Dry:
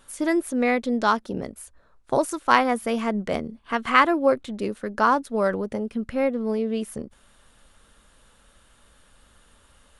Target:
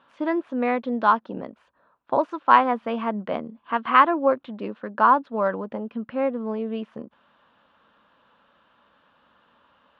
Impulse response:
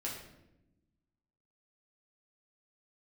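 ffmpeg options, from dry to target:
-af "highpass=210,equalizer=frequency=400:width_type=q:width=4:gain=-6,equalizer=frequency=1000:width_type=q:width=4:gain=6,equalizer=frequency=2100:width_type=q:width=4:gain=-7,lowpass=frequency=3000:width=0.5412,lowpass=frequency=3000:width=1.3066"

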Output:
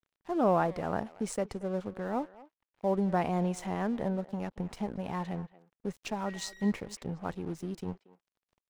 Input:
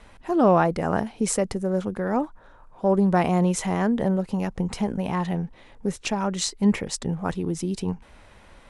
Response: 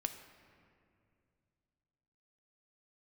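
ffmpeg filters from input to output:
-filter_complex "[0:a]equalizer=frequency=720:width=1.4:gain=2.5,asettb=1/sr,asplit=3[link_01][link_02][link_03];[link_01]atrim=end=6.264[link_04];[link_02]atrim=start=6.26:end=6.71,asetpts=PTS-STARTPTS,afade=type=in:duration=0.004:curve=qsin,afade=type=out:start_time=0.446:duration=0.004:curve=qsin,aeval=exprs='val(0)+0.0158*sin(2*PI*1900*n/s)':channel_layout=same[link_05];[link_03]atrim=start=6.706[link_06];[link_04][link_05]acrossfade=duration=0.004:curve1=hsin:curve2=qsin[link_07];[link_07][link_06]acrossfade=duration=0.004:curve1=qsin:curve2=hsin,highshelf=frequency=8700:gain=-8.5,aeval=exprs='sgn(val(0))*max(abs(val(0))-0.00891,0)':channel_layout=same,asplit=2[link_08][link_09];[link_09]adelay=230,highpass=300,lowpass=3400,asoftclip=type=hard:threshold=-16.5dB,volume=-18dB[link_10];[link_08][link_10]amix=inputs=2:normalize=0,volume=-9dB"

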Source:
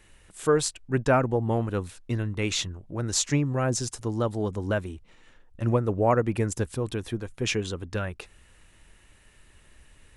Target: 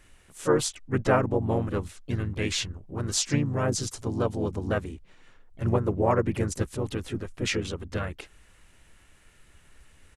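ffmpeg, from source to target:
ffmpeg -i in.wav -filter_complex "[0:a]asplit=3[link_01][link_02][link_03];[link_02]asetrate=35002,aresample=44100,atempo=1.25992,volume=-4dB[link_04];[link_03]asetrate=52444,aresample=44100,atempo=0.840896,volume=-10dB[link_05];[link_01][link_04][link_05]amix=inputs=3:normalize=0,volume=-2.5dB" out.wav

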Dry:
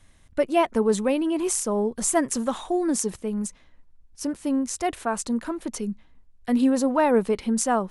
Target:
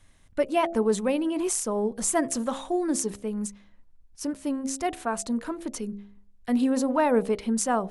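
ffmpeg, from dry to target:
ffmpeg -i in.wav -af "bandreject=frequency=67.37:width_type=h:width=4,bandreject=frequency=134.74:width_type=h:width=4,bandreject=frequency=202.11:width_type=h:width=4,bandreject=frequency=269.48:width_type=h:width=4,bandreject=frequency=336.85:width_type=h:width=4,bandreject=frequency=404.22:width_type=h:width=4,bandreject=frequency=471.59:width_type=h:width=4,bandreject=frequency=538.96:width_type=h:width=4,bandreject=frequency=606.33:width_type=h:width=4,bandreject=frequency=673.7:width_type=h:width=4,bandreject=frequency=741.07:width_type=h:width=4,bandreject=frequency=808.44:width_type=h:width=4,volume=-2dB" out.wav

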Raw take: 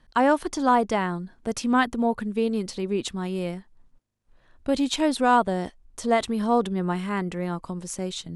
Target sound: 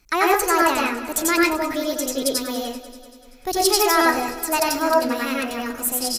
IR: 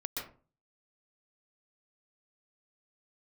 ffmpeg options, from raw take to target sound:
-filter_complex "[0:a]crystalizer=i=5:c=0[link_01];[1:a]atrim=start_sample=2205[link_02];[link_01][link_02]afir=irnorm=-1:irlink=0,asetrate=59535,aresample=44100,aecho=1:1:193|386|579|772|965|1158:0.178|0.107|0.064|0.0384|0.023|0.0138"

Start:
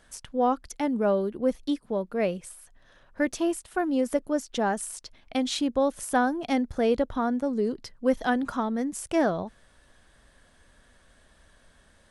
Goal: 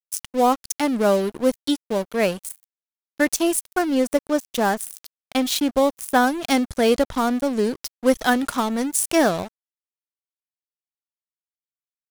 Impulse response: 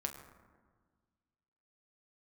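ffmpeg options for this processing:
-filter_complex "[0:a]asettb=1/sr,asplit=3[link_01][link_02][link_03];[link_01]atrim=end=3.794[link_04];[link_02]atrim=start=3.79:end=6.24,asetpts=PTS-STARTPTS,afade=type=in:duration=0.004:curve=qsin,afade=type=out:start_time=2.446:duration=0.004:curve=qsin,highshelf=frequency=4500:gain=-9[link_05];[link_03]atrim=start=6.236[link_06];[link_04][link_05]acrossfade=duration=0.004:curve1=hsin:curve2=qsin[link_07];[link_07][link_06]acrossfade=duration=0.004:curve1=qsin:curve2=hsin,aeval=exprs='sgn(val(0))*max(abs(val(0))-0.00891,0)':channel_layout=same,crystalizer=i=3.5:c=0,volume=6dB"

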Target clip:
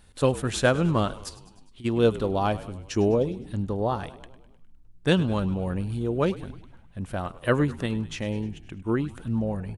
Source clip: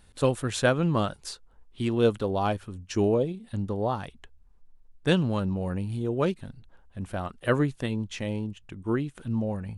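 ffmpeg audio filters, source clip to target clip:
ffmpeg -i in.wav -filter_complex "[0:a]asplit=3[link_01][link_02][link_03];[link_01]afade=type=out:start_time=1.28:duration=0.02[link_04];[link_02]acompressor=threshold=-49dB:ratio=4,afade=type=in:start_time=1.28:duration=0.02,afade=type=out:start_time=1.84:duration=0.02[link_05];[link_03]afade=type=in:start_time=1.84:duration=0.02[link_06];[link_04][link_05][link_06]amix=inputs=3:normalize=0,asplit=2[link_07][link_08];[link_08]asplit=6[link_09][link_10][link_11][link_12][link_13][link_14];[link_09]adelay=102,afreqshift=-60,volume=-17dB[link_15];[link_10]adelay=204,afreqshift=-120,volume=-21.2dB[link_16];[link_11]adelay=306,afreqshift=-180,volume=-25.3dB[link_17];[link_12]adelay=408,afreqshift=-240,volume=-29.5dB[link_18];[link_13]adelay=510,afreqshift=-300,volume=-33.6dB[link_19];[link_14]adelay=612,afreqshift=-360,volume=-37.8dB[link_20];[link_15][link_16][link_17][link_18][link_19][link_20]amix=inputs=6:normalize=0[link_21];[link_07][link_21]amix=inputs=2:normalize=0,volume=1.5dB" out.wav

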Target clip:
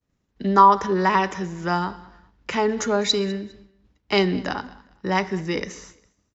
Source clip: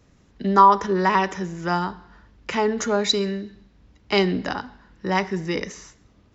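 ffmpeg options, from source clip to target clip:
ffmpeg -i in.wav -filter_complex "[0:a]agate=range=-33dB:threshold=-45dB:ratio=3:detection=peak,asplit=2[link_01][link_02];[link_02]aecho=0:1:203|406:0.0841|0.0219[link_03];[link_01][link_03]amix=inputs=2:normalize=0" out.wav

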